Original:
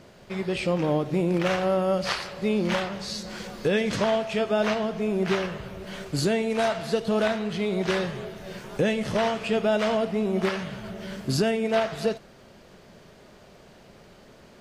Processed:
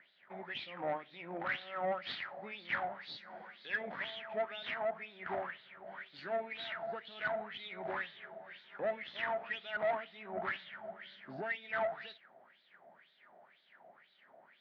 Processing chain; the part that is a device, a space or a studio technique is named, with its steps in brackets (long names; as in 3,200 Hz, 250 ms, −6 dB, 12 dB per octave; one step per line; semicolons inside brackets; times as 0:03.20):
wah-wah guitar rig (LFO wah 2 Hz 680–3,900 Hz, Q 6.5; tube saturation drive 32 dB, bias 0.35; loudspeaker in its box 100–3,400 Hz, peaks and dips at 170 Hz +4 dB, 250 Hz +3 dB, 460 Hz −5 dB, 1,100 Hz −5 dB, 1,900 Hz +5 dB, 2,700 Hz −7 dB)
level +4.5 dB